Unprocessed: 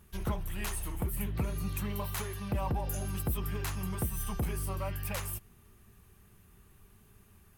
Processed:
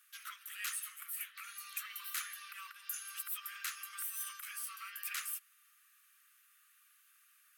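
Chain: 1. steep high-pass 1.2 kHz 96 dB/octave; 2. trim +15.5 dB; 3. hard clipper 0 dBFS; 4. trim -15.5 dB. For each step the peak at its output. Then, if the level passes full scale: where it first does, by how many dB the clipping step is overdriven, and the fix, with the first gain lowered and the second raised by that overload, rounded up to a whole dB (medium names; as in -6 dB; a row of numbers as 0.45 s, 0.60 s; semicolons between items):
-20.5 dBFS, -5.0 dBFS, -5.0 dBFS, -20.5 dBFS; nothing clips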